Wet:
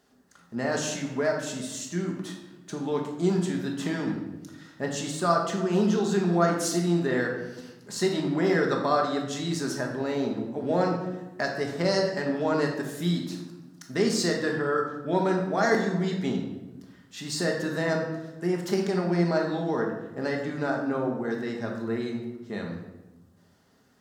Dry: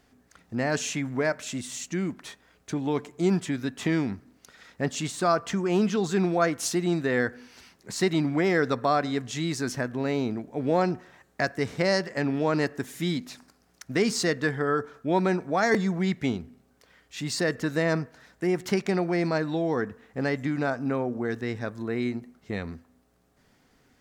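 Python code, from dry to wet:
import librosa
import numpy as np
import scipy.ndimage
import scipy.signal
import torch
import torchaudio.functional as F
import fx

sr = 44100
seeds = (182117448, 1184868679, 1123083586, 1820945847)

y = fx.highpass(x, sr, hz=200.0, slope=6)
y = fx.peak_eq(y, sr, hz=2300.0, db=-9.0, octaves=0.37)
y = fx.room_shoebox(y, sr, seeds[0], volume_m3=490.0, walls='mixed', distance_m=1.3)
y = y * librosa.db_to_amplitude(-2.0)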